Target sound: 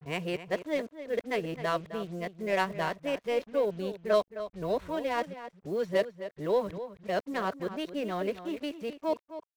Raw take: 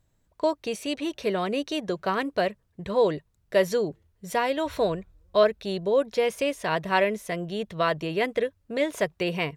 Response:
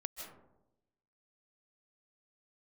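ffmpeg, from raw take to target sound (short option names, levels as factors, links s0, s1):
-filter_complex "[0:a]areverse,adynamicsmooth=sensitivity=3:basefreq=1800,acrusher=bits=7:mix=0:aa=0.5,asplit=2[s0][s1];[s1]adelay=262.4,volume=0.251,highshelf=f=4000:g=-5.9[s2];[s0][s2]amix=inputs=2:normalize=0,volume=0.531"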